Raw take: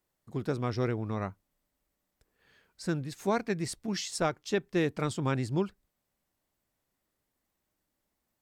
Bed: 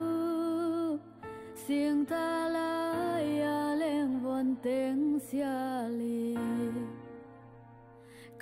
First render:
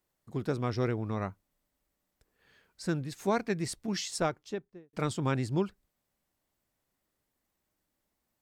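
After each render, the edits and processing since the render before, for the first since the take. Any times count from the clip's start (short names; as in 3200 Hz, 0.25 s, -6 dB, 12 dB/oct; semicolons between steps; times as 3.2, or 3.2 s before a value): 4.12–4.93 studio fade out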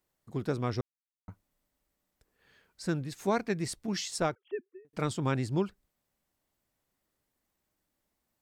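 0.81–1.28 mute; 4.35–4.85 sine-wave speech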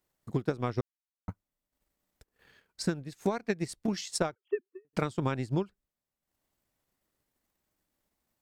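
transient shaper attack +9 dB, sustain -10 dB; compressor 6:1, threshold -25 dBFS, peak gain reduction 9.5 dB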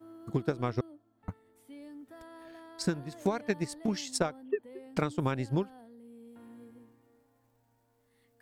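add bed -18.5 dB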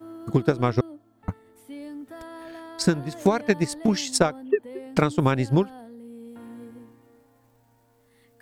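gain +9.5 dB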